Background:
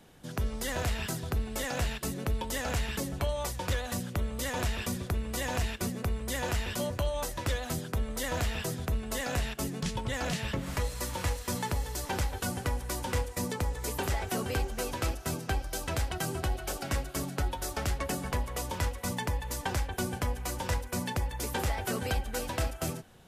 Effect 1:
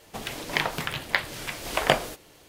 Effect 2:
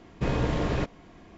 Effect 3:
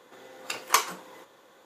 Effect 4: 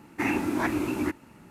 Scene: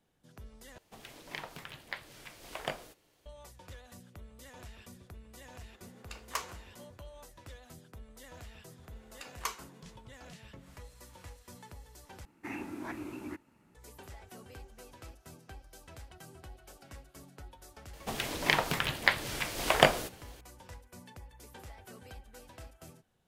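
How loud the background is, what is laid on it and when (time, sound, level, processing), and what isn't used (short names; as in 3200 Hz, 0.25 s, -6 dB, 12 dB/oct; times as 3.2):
background -18.5 dB
0.78 replace with 1 -16 dB
5.61 add 3 -14 dB + Doppler distortion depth 0.13 ms
8.71 add 3 -14.5 dB
12.25 replace with 4 -14 dB
17.93 add 1 -1 dB
not used: 2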